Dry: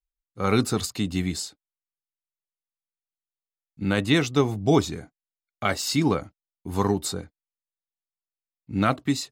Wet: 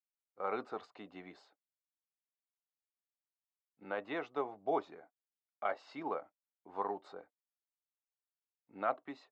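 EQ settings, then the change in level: ladder band-pass 840 Hz, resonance 30%; air absorption 83 m; +2.0 dB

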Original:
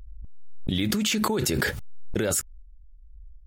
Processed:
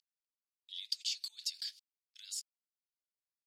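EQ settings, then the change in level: ladder band-pass 4000 Hz, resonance 40%; differentiator; bell 4800 Hz +14.5 dB 0.45 oct; -1.5 dB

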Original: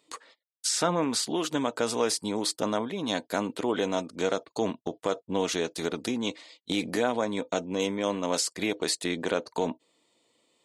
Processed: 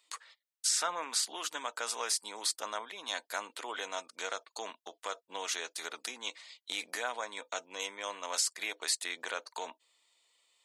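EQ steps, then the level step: HPF 1200 Hz 12 dB/oct; dynamic EQ 3400 Hz, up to -4 dB, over -45 dBFS, Q 0.93; 0.0 dB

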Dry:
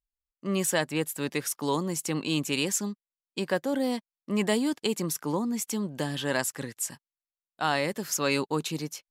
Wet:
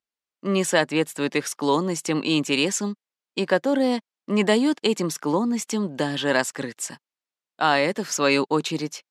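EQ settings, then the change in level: HPF 190 Hz 12 dB/oct; air absorption 64 m; +7.5 dB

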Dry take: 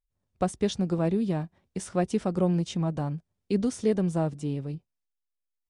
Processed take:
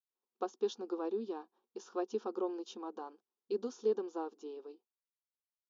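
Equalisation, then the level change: brick-wall FIR band-pass 230–7200 Hz; air absorption 100 m; fixed phaser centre 410 Hz, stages 8; -4.5 dB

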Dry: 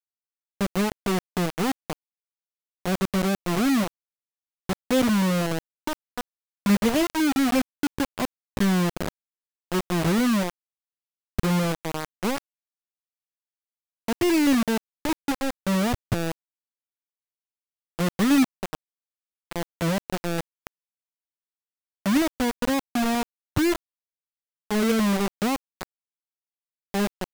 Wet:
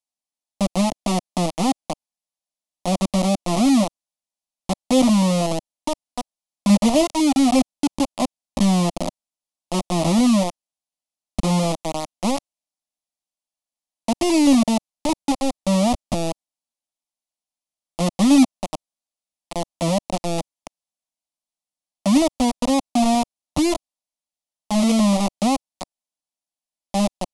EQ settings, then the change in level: elliptic low-pass 11000 Hz, stop band 40 dB; bell 620 Hz +4 dB 0.65 oct; fixed phaser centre 420 Hz, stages 6; +7.0 dB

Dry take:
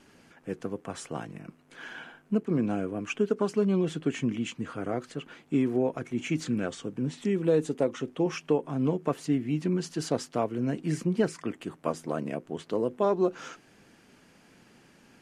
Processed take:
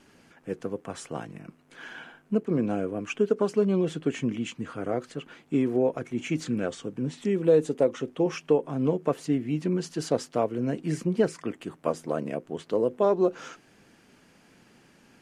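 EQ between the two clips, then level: dynamic EQ 510 Hz, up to +5 dB, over -38 dBFS, Q 1.9; 0.0 dB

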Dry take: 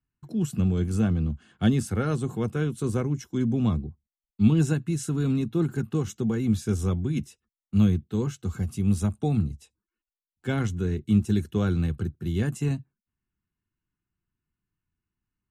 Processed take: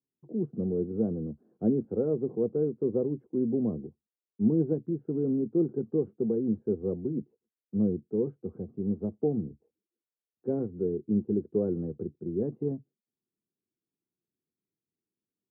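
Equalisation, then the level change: HPF 230 Hz 12 dB/oct; ladder low-pass 550 Hz, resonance 50%; +7.0 dB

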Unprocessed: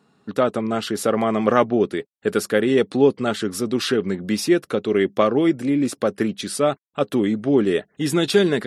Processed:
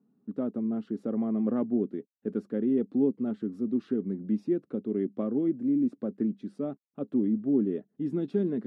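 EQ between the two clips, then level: band-pass 240 Hz, Q 2.7; -3.0 dB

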